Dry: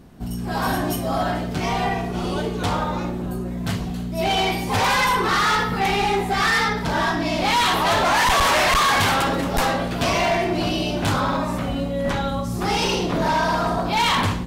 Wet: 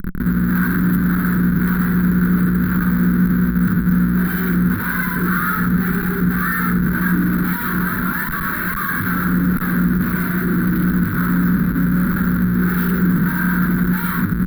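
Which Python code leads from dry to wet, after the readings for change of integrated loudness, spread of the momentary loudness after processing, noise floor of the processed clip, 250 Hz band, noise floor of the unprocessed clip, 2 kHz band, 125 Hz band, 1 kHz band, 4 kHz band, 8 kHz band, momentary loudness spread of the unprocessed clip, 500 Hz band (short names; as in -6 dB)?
+3.5 dB, 3 LU, -22 dBFS, +10.0 dB, -28 dBFS, +1.5 dB, +9.5 dB, -7.0 dB, under -15 dB, -8.0 dB, 9 LU, -8.0 dB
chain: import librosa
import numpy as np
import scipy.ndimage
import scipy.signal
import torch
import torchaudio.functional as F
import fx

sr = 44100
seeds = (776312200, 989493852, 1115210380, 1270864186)

y = fx.rider(x, sr, range_db=10, speed_s=0.5)
y = fx.low_shelf(y, sr, hz=160.0, db=10.5)
y = fx.schmitt(y, sr, flips_db=-26.0)
y = fx.curve_eq(y, sr, hz=(120.0, 180.0, 370.0, 730.0, 1500.0, 2800.0, 4100.0, 6200.0, 13000.0), db=(0, 14, 1, -21, 12, -18, -9, -29, 10))
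y = y * 10.0 ** (-6.0 / 20.0)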